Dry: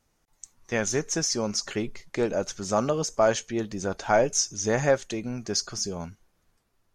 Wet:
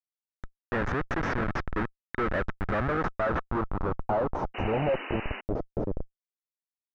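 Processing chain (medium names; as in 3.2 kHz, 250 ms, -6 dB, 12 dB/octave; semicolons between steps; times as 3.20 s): Schmitt trigger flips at -26 dBFS; small resonant body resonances 1.3/3.7 kHz, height 6 dB, ringing for 40 ms; low-pass sweep 1.7 kHz -> 540 Hz, 2.68–5.75 s; painted sound noise, 4.54–5.41 s, 200–3000 Hz -39 dBFS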